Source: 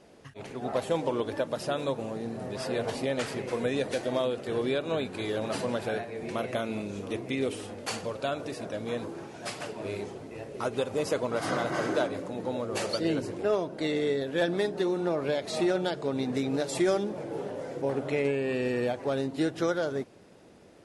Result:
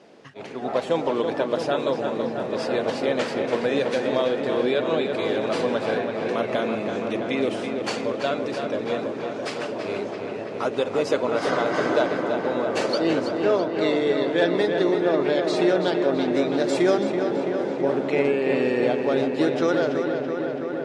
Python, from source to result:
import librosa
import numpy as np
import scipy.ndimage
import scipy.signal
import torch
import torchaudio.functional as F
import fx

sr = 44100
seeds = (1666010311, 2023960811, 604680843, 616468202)

p1 = fx.bandpass_edges(x, sr, low_hz=190.0, high_hz=5600.0)
p2 = p1 + fx.echo_filtered(p1, sr, ms=331, feedback_pct=82, hz=3900.0, wet_db=-6.0, dry=0)
y = p2 * 10.0 ** (5.5 / 20.0)